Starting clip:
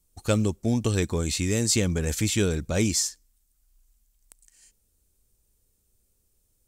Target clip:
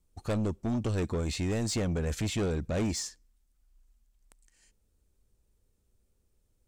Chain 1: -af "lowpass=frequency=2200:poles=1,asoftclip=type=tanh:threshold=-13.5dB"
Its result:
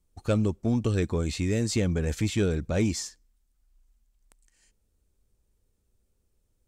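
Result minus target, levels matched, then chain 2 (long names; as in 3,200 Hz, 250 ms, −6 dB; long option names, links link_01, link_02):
soft clipping: distortion −13 dB
-af "lowpass=frequency=2200:poles=1,asoftclip=type=tanh:threshold=-25.5dB"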